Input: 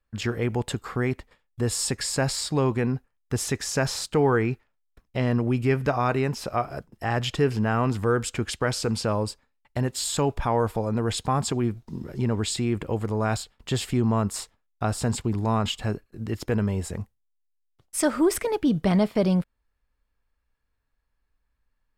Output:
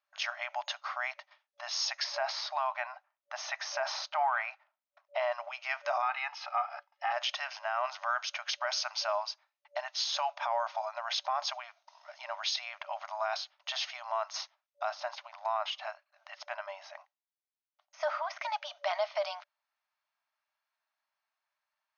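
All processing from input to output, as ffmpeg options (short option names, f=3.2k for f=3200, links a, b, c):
-filter_complex "[0:a]asettb=1/sr,asplit=3[a][b][c];[a]atrim=end=2.044[d];[b]atrim=start=2.04:end=5.32,asetpts=PTS-STARTPTS,afade=t=in:d=0.004:c=qsin,afade=t=out:st=3.276:d=0.004:c=qsin,lowpass=f=1.2k:p=1,acontrast=63[e];[c]atrim=start=5.316[f];[d][e]acrossfade=d=0.004:c1=hsin:c2=qsin[g];[g][f]acrossfade=d=0.004:c1=qsin:c2=hsin,asettb=1/sr,asplit=3[h][i][j];[h]atrim=end=6.024[k];[i]atrim=start=6.02:end=7.12,asetpts=PTS-STARTPTS,afade=t=in:d=0.004:c=qsin,afade=t=out:st=1.096:d=0.004:c=qsin,highpass=760,lowpass=3.2k,aecho=1:1:2.4:0.78,atrim=end_sample=48510[l];[j]atrim=start=7.116[m];[k][l]acrossfade=d=0.004:c1=hsin:c2=qsin[n];[n][m]acrossfade=d=0.004:c1=qsin:c2=hsin,asettb=1/sr,asplit=3[o][p][q];[o]atrim=end=14.894[r];[p]atrim=start=14.89:end=18.42,asetpts=PTS-STARTPTS,afade=t=in:d=0.004:c=qsin,afade=t=out:st=3.526:d=0.004:c=qsin,highshelf=f=4.4k:g=-10,deesser=0.95[s];[q]atrim=start=18.416[t];[r][s]acrossfade=d=0.004:c1=hsin:c2=qsin[u];[u][t]acrossfade=d=0.004:c1=qsin:c2=hsin,bandreject=f=1.7k:w=17,afftfilt=real='re*between(b*sr/4096,580,6600)':imag='im*between(b*sr/4096,580,6600)':win_size=4096:overlap=0.75,alimiter=limit=-21.5dB:level=0:latency=1:release=26"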